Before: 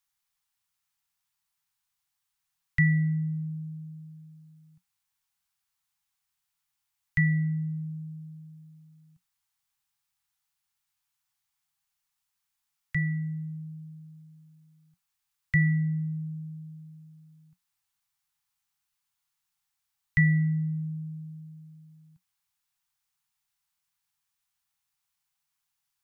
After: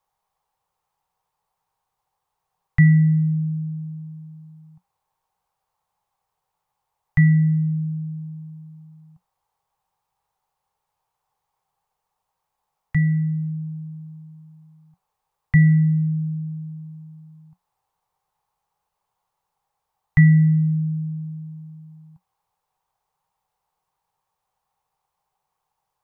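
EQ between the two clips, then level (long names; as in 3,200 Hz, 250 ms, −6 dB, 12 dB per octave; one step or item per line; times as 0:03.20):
tilt shelving filter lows +7 dB, about 1,400 Hz
flat-topped bell 660 Hz +14 dB
notch filter 1,000 Hz, Q 27
+3.0 dB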